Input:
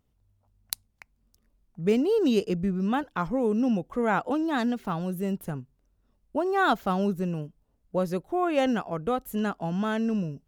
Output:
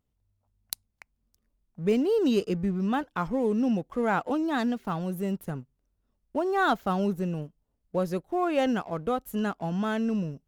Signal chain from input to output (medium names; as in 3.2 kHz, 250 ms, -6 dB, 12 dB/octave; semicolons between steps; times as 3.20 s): waveshaping leveller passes 1; trim -4.5 dB